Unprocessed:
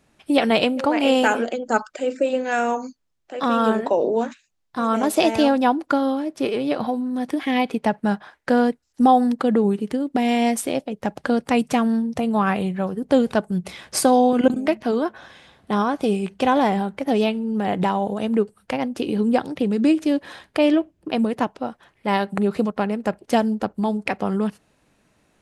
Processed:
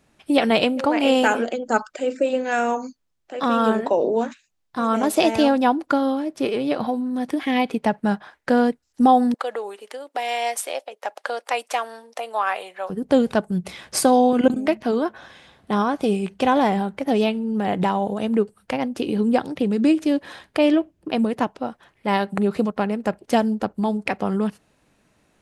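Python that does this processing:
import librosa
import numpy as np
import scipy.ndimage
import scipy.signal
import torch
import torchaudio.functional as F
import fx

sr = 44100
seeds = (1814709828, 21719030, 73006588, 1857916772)

y = fx.highpass(x, sr, hz=550.0, slope=24, at=(9.34, 12.9))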